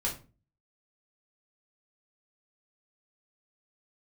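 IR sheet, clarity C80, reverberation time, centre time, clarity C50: 16.0 dB, 0.35 s, 21 ms, 9.5 dB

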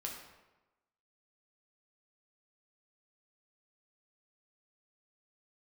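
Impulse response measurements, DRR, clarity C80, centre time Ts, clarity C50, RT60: −1.0 dB, 6.5 dB, 42 ms, 4.0 dB, 1.1 s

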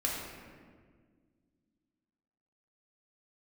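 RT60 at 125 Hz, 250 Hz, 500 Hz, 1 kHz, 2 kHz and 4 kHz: 2.5, 2.9, 2.0, 1.5, 1.4, 1.0 seconds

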